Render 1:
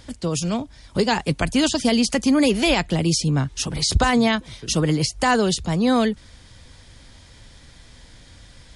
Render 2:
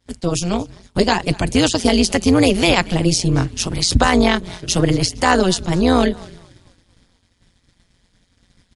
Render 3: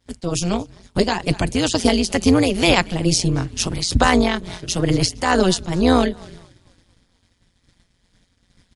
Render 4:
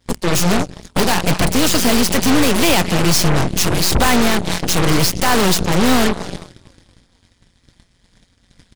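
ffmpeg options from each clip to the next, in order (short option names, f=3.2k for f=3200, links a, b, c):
-filter_complex "[0:a]asplit=6[a][b][c][d][e][f];[b]adelay=233,afreqshift=-44,volume=-22.5dB[g];[c]adelay=466,afreqshift=-88,volume=-26.7dB[h];[d]adelay=699,afreqshift=-132,volume=-30.8dB[i];[e]adelay=932,afreqshift=-176,volume=-35dB[j];[f]adelay=1165,afreqshift=-220,volume=-39.1dB[k];[a][g][h][i][j][k]amix=inputs=6:normalize=0,tremolo=f=180:d=0.857,agate=range=-33dB:threshold=-37dB:ratio=3:detection=peak,volume=7.5dB"
-af "tremolo=f=2.2:d=0.45"
-af "asoftclip=type=tanh:threshold=-16.5dB,aeval=exprs='0.15*(cos(1*acos(clip(val(0)/0.15,-1,1)))-cos(1*PI/2))+0.0668*(cos(8*acos(clip(val(0)/0.15,-1,1)))-cos(8*PI/2))':c=same,volume=6dB"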